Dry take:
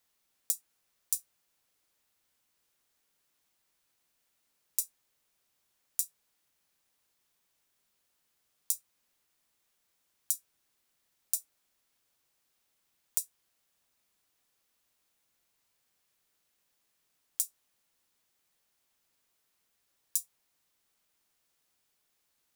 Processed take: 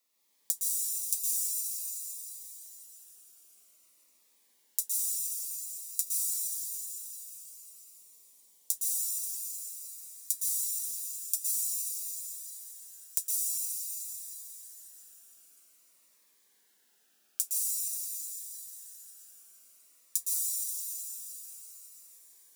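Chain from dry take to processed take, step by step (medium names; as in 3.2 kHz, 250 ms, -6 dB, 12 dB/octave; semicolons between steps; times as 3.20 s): high-pass 220 Hz 24 dB/octave; peaking EQ 1.6 kHz -2.5 dB 0.5 oct, from 6.00 s -10.5 dB, from 8.73 s +4 dB; reverberation RT60 5.2 s, pre-delay 109 ms, DRR -8 dB; Shepard-style phaser falling 0.5 Hz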